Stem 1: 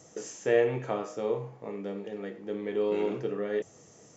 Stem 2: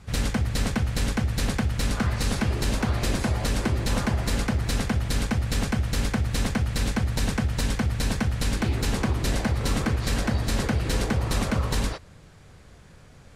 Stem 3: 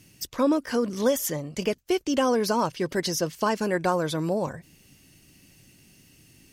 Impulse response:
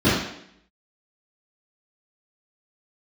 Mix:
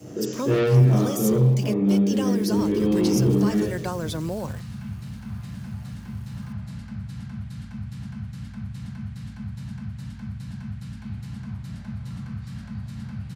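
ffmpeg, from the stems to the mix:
-filter_complex "[0:a]volume=0.531,asplit=2[s0][s1];[s1]volume=0.631[s2];[1:a]highpass=120,firequalizer=gain_entry='entry(160,0);entry(320,-29);entry(860,-9)':delay=0.05:min_phase=1,adelay=2400,volume=0.2,asplit=2[s3][s4];[s4]volume=0.141[s5];[2:a]acrusher=bits=8:dc=4:mix=0:aa=0.000001,volume=0.944[s6];[3:a]atrim=start_sample=2205[s7];[s2][s5]amix=inputs=2:normalize=0[s8];[s8][s7]afir=irnorm=-1:irlink=0[s9];[s0][s3][s6][s9]amix=inputs=4:normalize=0,asoftclip=type=tanh:threshold=0.473,highpass=50,acrossover=split=210|3000[s10][s11][s12];[s11]acompressor=threshold=0.0251:ratio=2[s13];[s10][s13][s12]amix=inputs=3:normalize=0"

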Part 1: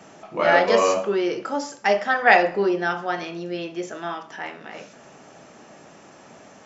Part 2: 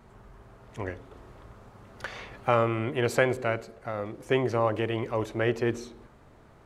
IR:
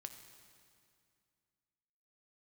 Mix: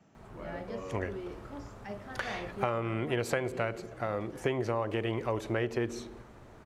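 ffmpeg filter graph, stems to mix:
-filter_complex "[0:a]bass=f=250:g=13,treble=f=4000:g=-3,acrossover=split=470[s0][s1];[s1]acompressor=threshold=0.0158:ratio=1.5[s2];[s0][s2]amix=inputs=2:normalize=0,volume=0.1[s3];[1:a]adelay=150,volume=1.12,asplit=2[s4][s5];[s5]volume=0.188[s6];[2:a]atrim=start_sample=2205[s7];[s6][s7]afir=irnorm=-1:irlink=0[s8];[s3][s4][s8]amix=inputs=3:normalize=0,acompressor=threshold=0.0447:ratio=6"

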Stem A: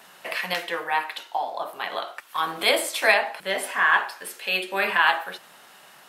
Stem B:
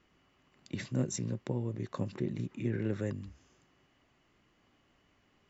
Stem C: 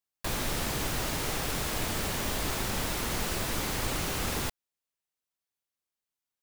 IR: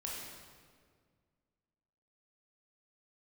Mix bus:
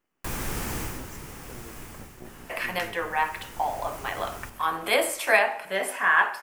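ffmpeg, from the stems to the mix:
-filter_complex "[0:a]adelay=2250,volume=0.891,asplit=2[s0][s1];[s1]volume=0.133[s2];[1:a]highpass=210,aeval=exprs='max(val(0),0)':c=same,volume=0.562[s3];[2:a]equalizer=f=610:t=o:w=0.37:g=-7.5,volume=2.24,afade=t=out:st=0.77:d=0.24:silence=0.298538,afade=t=out:st=1.81:d=0.36:silence=0.334965,afade=t=in:st=3:d=0.78:silence=0.334965,asplit=2[s4][s5];[s5]volume=0.708[s6];[3:a]atrim=start_sample=2205[s7];[s2][s6]amix=inputs=2:normalize=0[s8];[s8][s7]afir=irnorm=-1:irlink=0[s9];[s0][s3][s4][s9]amix=inputs=4:normalize=0,equalizer=f=3900:w=1.8:g=-9"

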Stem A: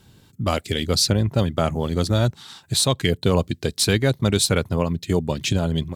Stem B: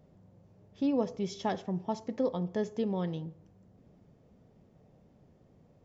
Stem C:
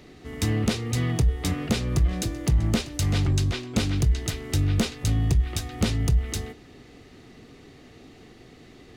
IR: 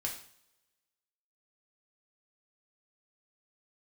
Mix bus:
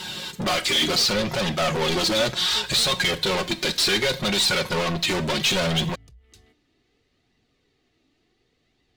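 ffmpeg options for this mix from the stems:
-filter_complex "[0:a]aecho=1:1:5.5:0.65,alimiter=limit=0.316:level=0:latency=1:release=341,asplit=2[s0][s1];[s1]highpass=f=720:p=1,volume=63.1,asoftclip=type=tanh:threshold=0.316[s2];[s0][s2]amix=inputs=2:normalize=0,lowpass=f=5300:p=1,volume=0.501,volume=0.473,asplit=2[s3][s4];[s4]volume=0.447[s5];[1:a]volume=0.562[s6];[2:a]acompressor=threshold=0.0398:ratio=12,volume=0.15[s7];[3:a]atrim=start_sample=2205[s8];[s5][s8]afir=irnorm=-1:irlink=0[s9];[s3][s6][s7][s9]amix=inputs=4:normalize=0,equalizer=f=3800:w=0.72:g=6.5,flanger=delay=1:depth=2.5:regen=56:speed=0.68:shape=triangular"

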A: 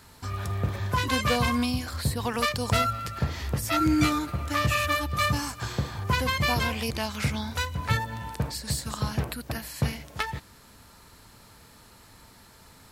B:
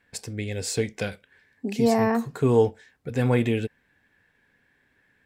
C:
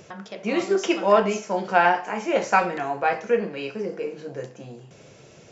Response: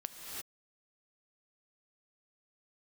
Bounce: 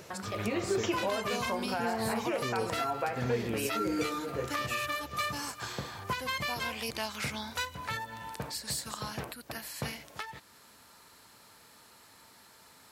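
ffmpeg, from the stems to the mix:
-filter_complex "[0:a]highpass=f=410:p=1,volume=0.75[s0];[1:a]volume=0.355[s1];[2:a]bandreject=f=50:t=h:w=6,bandreject=f=100:t=h:w=6,bandreject=f=150:t=h:w=6,bandreject=f=200:t=h:w=6,acompressor=threshold=0.0708:ratio=3,volume=0.794[s2];[s0][s1][s2]amix=inputs=3:normalize=0,alimiter=limit=0.0891:level=0:latency=1:release=344"

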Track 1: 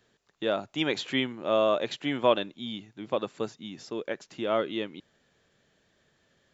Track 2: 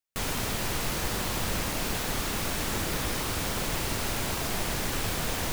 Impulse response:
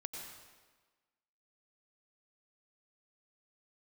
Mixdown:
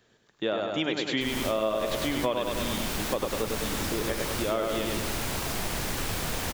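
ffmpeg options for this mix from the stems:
-filter_complex "[0:a]volume=1.41,asplit=3[s0][s1][s2];[s1]volume=0.668[s3];[1:a]adelay=1050,volume=1[s4];[s2]apad=whole_len=289803[s5];[s4][s5]sidechaincompress=threshold=0.0501:ratio=8:attack=46:release=259[s6];[s3]aecho=0:1:101|202|303|404|505|606|707|808:1|0.54|0.292|0.157|0.085|0.0459|0.0248|0.0134[s7];[s0][s6][s7]amix=inputs=3:normalize=0,acompressor=threshold=0.0562:ratio=4"

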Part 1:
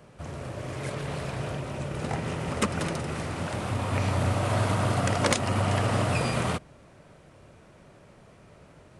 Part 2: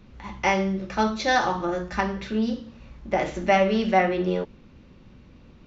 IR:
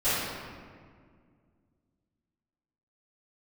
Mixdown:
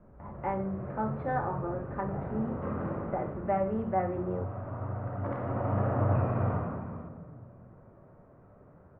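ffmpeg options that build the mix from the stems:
-filter_complex "[0:a]volume=0.75,afade=t=out:st=2.98:d=0.37:silence=0.421697,afade=t=in:st=5.18:d=0.43:silence=0.354813,asplit=3[s0][s1][s2];[s1]volume=0.355[s3];[s2]volume=0.266[s4];[1:a]volume=0.355,asplit=2[s5][s6];[s6]apad=whole_len=396842[s7];[s0][s7]sidechaincompress=threshold=0.00562:ratio=8:attack=16:release=347[s8];[2:a]atrim=start_sample=2205[s9];[s3][s9]afir=irnorm=-1:irlink=0[s10];[s4]aecho=0:1:510:1[s11];[s8][s5][s10][s11]amix=inputs=4:normalize=0,lowpass=f=1400:w=0.5412,lowpass=f=1400:w=1.3066"

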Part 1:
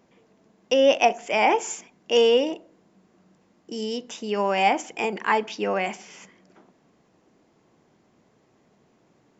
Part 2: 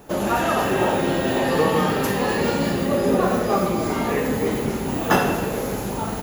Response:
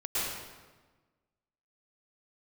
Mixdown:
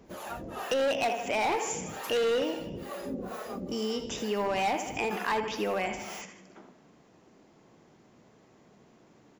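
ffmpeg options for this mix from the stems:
-filter_complex "[0:a]volume=1.33,asplit=2[s0][s1];[s1]volume=0.282[s2];[1:a]aphaser=in_gain=1:out_gain=1:delay=4.7:decay=0.37:speed=0.44:type=triangular,acrossover=split=480[s3][s4];[s3]aeval=exprs='val(0)*(1-1/2+1/2*cos(2*PI*2.2*n/s))':c=same[s5];[s4]aeval=exprs='val(0)*(1-1/2-1/2*cos(2*PI*2.2*n/s))':c=same[s6];[s5][s6]amix=inputs=2:normalize=0,volume=0.251[s7];[s2]aecho=0:1:78|156|234|312|390|468|546:1|0.48|0.23|0.111|0.0531|0.0255|0.0122[s8];[s0][s7][s8]amix=inputs=3:normalize=0,volume=5.96,asoftclip=hard,volume=0.168,acompressor=threshold=0.0224:ratio=2"

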